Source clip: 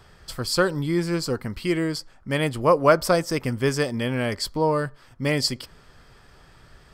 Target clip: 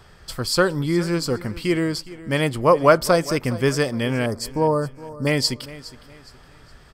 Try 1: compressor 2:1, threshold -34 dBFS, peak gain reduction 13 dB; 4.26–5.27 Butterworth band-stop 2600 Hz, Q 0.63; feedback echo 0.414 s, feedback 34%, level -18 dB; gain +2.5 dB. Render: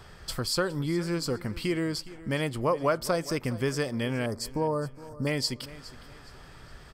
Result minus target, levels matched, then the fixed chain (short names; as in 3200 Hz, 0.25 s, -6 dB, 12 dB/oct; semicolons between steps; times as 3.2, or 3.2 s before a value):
compressor: peak gain reduction +13 dB
4.26–5.27 Butterworth band-stop 2600 Hz, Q 0.63; feedback echo 0.414 s, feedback 34%, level -18 dB; gain +2.5 dB